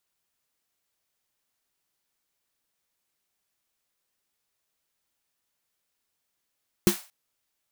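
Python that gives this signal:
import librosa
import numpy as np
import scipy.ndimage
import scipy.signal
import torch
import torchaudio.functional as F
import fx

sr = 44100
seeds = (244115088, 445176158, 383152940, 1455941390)

y = fx.drum_snare(sr, seeds[0], length_s=0.23, hz=200.0, second_hz=350.0, noise_db=-9, noise_from_hz=660.0, decay_s=0.12, noise_decay_s=0.35)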